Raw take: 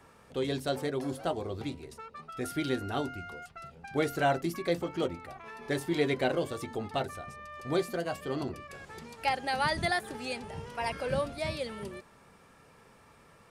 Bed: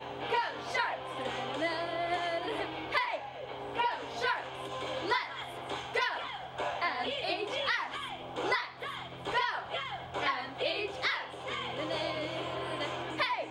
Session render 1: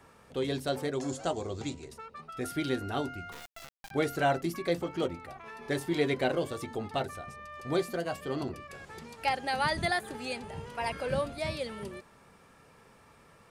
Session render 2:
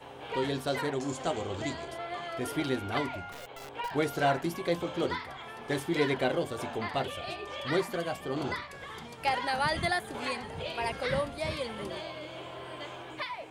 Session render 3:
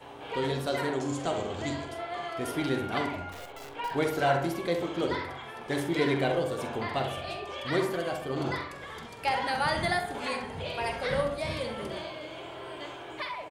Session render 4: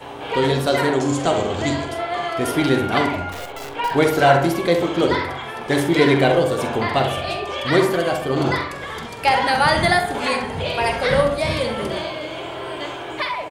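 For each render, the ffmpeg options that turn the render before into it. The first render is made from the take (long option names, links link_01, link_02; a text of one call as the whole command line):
ffmpeg -i in.wav -filter_complex "[0:a]asettb=1/sr,asplit=3[link_01][link_02][link_03];[link_01]atrim=end=0.934[link_04];[link_02]atrim=start=0.93:end=1.89,asetpts=PTS-STARTPTS,afade=type=in:duration=0.004:curve=qsin,afade=type=out:start_time=0.956:duration=0.004:curve=qsin,lowpass=frequency=7100:width_type=q:width=6.2[link_05];[link_03]atrim=start=1.886[link_06];[link_04][link_05]acrossfade=duration=0.004:curve1=hsin:curve2=qsin[link_07];[link_07][link_06]acrossfade=duration=0.004:curve1=qsin:curve2=hsin,asettb=1/sr,asplit=3[link_08][link_09][link_10];[link_08]atrim=end=3.324[link_11];[link_09]atrim=start=3.32:end=3.91,asetpts=PTS-STARTPTS,afade=type=in:duration=0.004:curve=qsin,afade=type=out:start_time=0.586:duration=0.004:curve=qsin,acrusher=bits=4:dc=4:mix=0:aa=0.000001[link_12];[link_10]atrim=start=3.906[link_13];[link_11][link_12]acrossfade=duration=0.004:curve1=hsin:curve2=qsin[link_14];[link_14][link_13]acrossfade=duration=0.004:curve1=qsin:curve2=hsin,asettb=1/sr,asplit=3[link_15][link_16][link_17];[link_15]atrim=end=9.524[link_18];[link_16]atrim=start=9.52:end=11.41,asetpts=PTS-STARTPTS,afade=type=in:duration=0.004:curve=qsin,afade=type=out:start_time=1.886:duration=0.004:curve=qsin,bandreject=frequency=5500:width=12[link_19];[link_17]atrim=start=11.406[link_20];[link_18][link_19]acrossfade=duration=0.004:curve1=hsin:curve2=qsin[link_21];[link_21][link_20]acrossfade=duration=0.004:curve1=qsin:curve2=hsin" out.wav
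ffmpeg -i in.wav -i bed.wav -filter_complex "[1:a]volume=-6dB[link_01];[0:a][link_01]amix=inputs=2:normalize=0" out.wav
ffmpeg -i in.wav -filter_complex "[0:a]asplit=2[link_01][link_02];[link_02]adelay=45,volume=-11dB[link_03];[link_01][link_03]amix=inputs=2:normalize=0,asplit=2[link_04][link_05];[link_05]adelay=66,lowpass=frequency=2000:poles=1,volume=-5.5dB,asplit=2[link_06][link_07];[link_07]adelay=66,lowpass=frequency=2000:poles=1,volume=0.53,asplit=2[link_08][link_09];[link_09]adelay=66,lowpass=frequency=2000:poles=1,volume=0.53,asplit=2[link_10][link_11];[link_11]adelay=66,lowpass=frequency=2000:poles=1,volume=0.53,asplit=2[link_12][link_13];[link_13]adelay=66,lowpass=frequency=2000:poles=1,volume=0.53,asplit=2[link_14][link_15];[link_15]adelay=66,lowpass=frequency=2000:poles=1,volume=0.53,asplit=2[link_16][link_17];[link_17]adelay=66,lowpass=frequency=2000:poles=1,volume=0.53[link_18];[link_04][link_06][link_08][link_10][link_12][link_14][link_16][link_18]amix=inputs=8:normalize=0" out.wav
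ffmpeg -i in.wav -af "volume=11.5dB" out.wav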